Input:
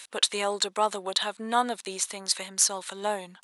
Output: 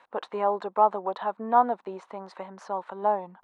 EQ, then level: resonant low-pass 930 Hz, resonance Q 2.1; 0.0 dB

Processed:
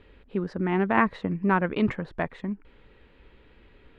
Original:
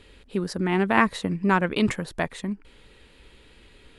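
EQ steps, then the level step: low-pass 2.1 kHz 12 dB/octave; -1.5 dB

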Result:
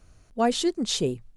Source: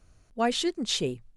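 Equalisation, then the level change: dynamic bell 2.3 kHz, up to -7 dB, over -43 dBFS, Q 0.81; +4.0 dB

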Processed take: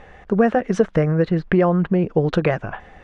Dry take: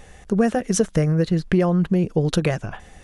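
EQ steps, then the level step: low-pass 1.9 kHz 12 dB/octave; bass shelf 340 Hz -9 dB; +7.0 dB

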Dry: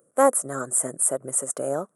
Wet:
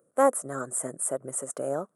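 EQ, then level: treble shelf 5.3 kHz -6.5 dB; -3.0 dB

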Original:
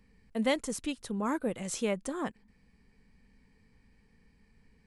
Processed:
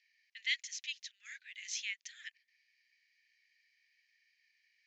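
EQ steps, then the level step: steep high-pass 1.8 kHz 72 dB/octave; steep low-pass 6.8 kHz 96 dB/octave; +2.0 dB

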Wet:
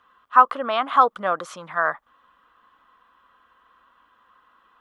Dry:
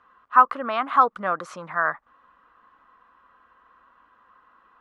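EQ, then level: dynamic bell 580 Hz, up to +6 dB, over -34 dBFS, Q 0.83; peaking EQ 3.3 kHz +8.5 dB 0.38 oct; treble shelf 5.1 kHz +10 dB; -2.0 dB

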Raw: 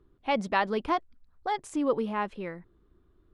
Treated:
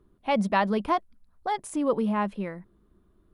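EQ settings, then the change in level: graphic EQ with 31 bands 200 Hz +10 dB, 630 Hz +5 dB, 1 kHz +3 dB, 10 kHz +11 dB; 0.0 dB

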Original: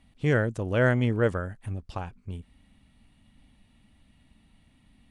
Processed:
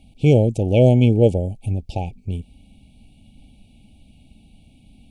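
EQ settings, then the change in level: brick-wall FIR band-stop 870–2200 Hz; bass shelf 390 Hz +3 dB; +8.0 dB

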